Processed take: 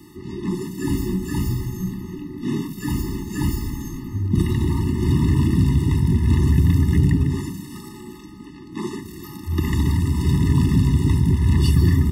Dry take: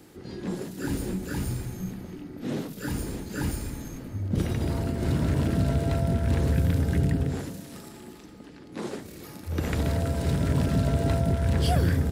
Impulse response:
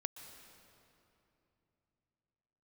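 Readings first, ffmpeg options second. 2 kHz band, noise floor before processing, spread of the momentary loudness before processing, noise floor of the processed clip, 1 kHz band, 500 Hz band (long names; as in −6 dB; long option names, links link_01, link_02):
+2.0 dB, −46 dBFS, 17 LU, −39 dBFS, 0.0 dB, 0.0 dB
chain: -filter_complex "[0:a]acrossover=split=340|3000[link_01][link_02][link_03];[link_02]acompressor=threshold=-32dB:ratio=6[link_04];[link_01][link_04][link_03]amix=inputs=3:normalize=0,afftfilt=real='re*eq(mod(floor(b*sr/1024/430),2),0)':imag='im*eq(mod(floor(b*sr/1024/430),2),0)':win_size=1024:overlap=0.75,volume=7.5dB"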